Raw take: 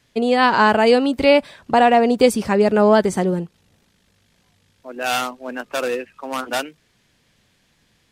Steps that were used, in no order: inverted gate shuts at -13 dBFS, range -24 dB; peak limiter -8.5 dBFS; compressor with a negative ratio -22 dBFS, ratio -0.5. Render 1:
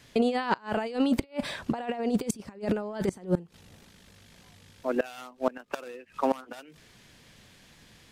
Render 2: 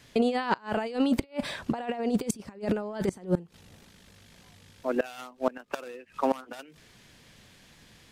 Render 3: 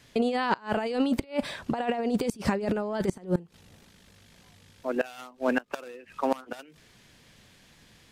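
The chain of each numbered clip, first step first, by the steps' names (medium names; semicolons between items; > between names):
compressor with a negative ratio > peak limiter > inverted gate; compressor with a negative ratio > inverted gate > peak limiter; peak limiter > compressor with a negative ratio > inverted gate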